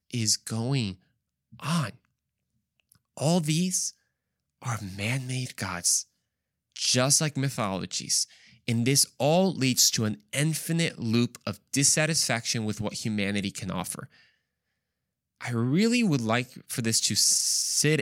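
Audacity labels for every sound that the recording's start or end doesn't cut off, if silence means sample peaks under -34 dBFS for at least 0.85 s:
3.170000	14.040000	sound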